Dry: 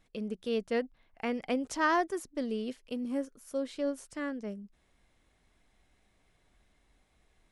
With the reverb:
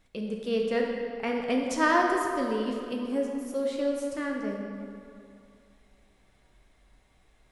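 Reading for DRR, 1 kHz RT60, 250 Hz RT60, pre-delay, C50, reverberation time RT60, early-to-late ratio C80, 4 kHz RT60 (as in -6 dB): 0.0 dB, 2.6 s, 2.3 s, 12 ms, 1.5 dB, 2.6 s, 3.0 dB, 1.6 s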